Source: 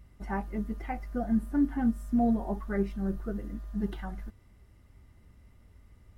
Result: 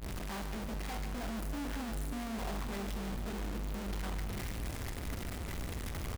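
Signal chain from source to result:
sign of each sample alone
brickwall limiter −38.5 dBFS, peak gain reduction 24 dB
double-tracking delay 45 ms −11.5 dB
echo with a time of its own for lows and highs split 540 Hz, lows 500 ms, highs 147 ms, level −9.5 dB
level −1 dB

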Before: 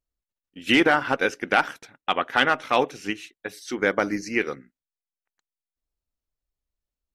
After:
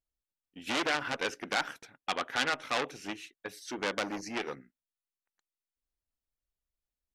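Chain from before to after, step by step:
saturating transformer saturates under 3,800 Hz
level −5.5 dB

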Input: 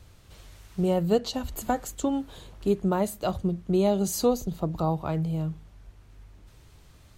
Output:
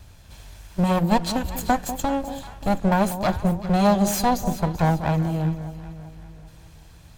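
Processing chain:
lower of the sound and its delayed copy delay 1.2 ms
delay that swaps between a low-pass and a high-pass 194 ms, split 900 Hz, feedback 65%, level −10 dB
level +6 dB

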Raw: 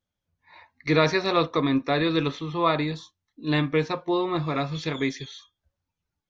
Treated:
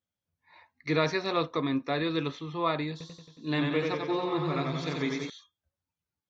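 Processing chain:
high-pass filter 77 Hz
0:02.91–0:05.30: feedback echo with a swinging delay time 91 ms, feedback 66%, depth 84 cents, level −3.5 dB
level −6 dB

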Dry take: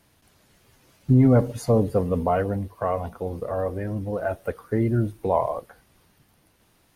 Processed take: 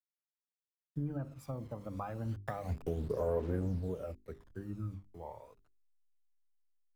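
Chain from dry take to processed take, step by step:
hold until the input has moved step −38 dBFS
source passing by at 0:02.70, 41 m/s, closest 4.4 metres
high-shelf EQ 2,400 Hz −8.5 dB
mains-hum notches 50/100/150/200/250/300/350/400 Hz
downward compressor 16 to 1, threshold −42 dBFS, peak gain reduction 18 dB
phase shifter 0.29 Hz, delay 1 ms, feedback 54%
multiband upward and downward expander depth 40%
level +7 dB

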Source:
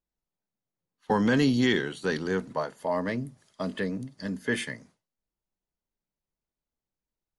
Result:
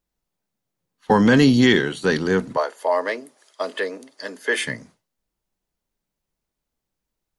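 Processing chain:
0:02.57–0:04.65: high-pass filter 390 Hz 24 dB per octave
level +8.5 dB

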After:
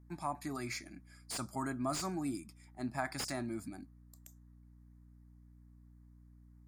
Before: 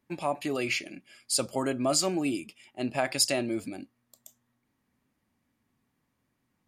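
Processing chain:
phaser with its sweep stopped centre 1,200 Hz, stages 4
mains hum 60 Hz, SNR 18 dB
slew-rate limiting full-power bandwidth 120 Hz
level −3.5 dB

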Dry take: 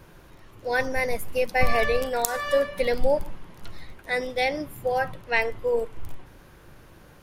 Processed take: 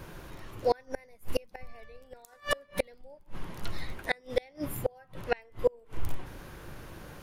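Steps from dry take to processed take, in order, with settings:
0:01.44–0:02.19: low-shelf EQ 180 Hz +7.5 dB
gate with flip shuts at −18 dBFS, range −34 dB
level +4.5 dB

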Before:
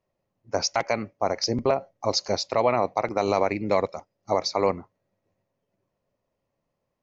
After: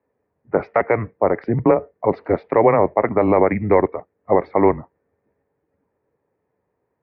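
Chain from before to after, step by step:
single-sideband voice off tune −110 Hz 160–2,200 Hz
high-pass filter 80 Hz
level +8 dB

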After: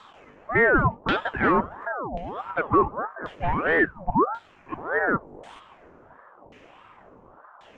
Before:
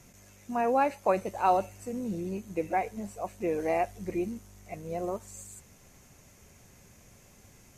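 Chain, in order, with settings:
stylus tracing distortion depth 0.098 ms
0:01.71–0:02.51: compressor whose output falls as the input rises −39 dBFS, ratio −1
0:03.79–0:04.78: high-pass filter 230 Hz 24 dB per octave
gain into a clipping stage and back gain 26 dB
auto-filter low-pass saw down 0.92 Hz 340–2,800 Hz
ring modulator whose carrier an LFO sweeps 750 Hz, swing 55%, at 1.6 Hz
level +8.5 dB

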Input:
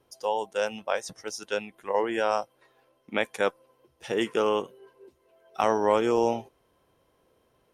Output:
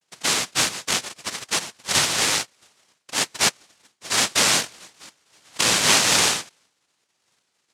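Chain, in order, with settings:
cochlear-implant simulation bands 1
downward expander −59 dBFS
level +5 dB

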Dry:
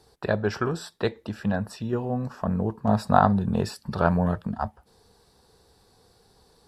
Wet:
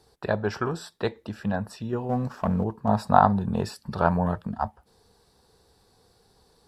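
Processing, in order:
dynamic equaliser 900 Hz, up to +6 dB, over −38 dBFS, Q 2.2
0:02.09–0:02.64: leveller curve on the samples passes 1
level −2 dB

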